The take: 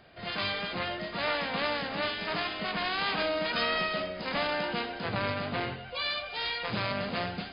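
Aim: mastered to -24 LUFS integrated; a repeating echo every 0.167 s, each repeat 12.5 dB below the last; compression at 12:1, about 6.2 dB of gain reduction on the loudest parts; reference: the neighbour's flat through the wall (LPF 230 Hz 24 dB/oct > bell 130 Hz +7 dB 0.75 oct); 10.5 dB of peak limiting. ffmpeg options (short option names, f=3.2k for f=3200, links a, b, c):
-af "acompressor=threshold=-31dB:ratio=12,alimiter=level_in=6.5dB:limit=-24dB:level=0:latency=1,volume=-6.5dB,lowpass=f=230:w=0.5412,lowpass=f=230:w=1.3066,equalizer=f=130:t=o:w=0.75:g=7,aecho=1:1:167|334|501:0.237|0.0569|0.0137,volume=24dB"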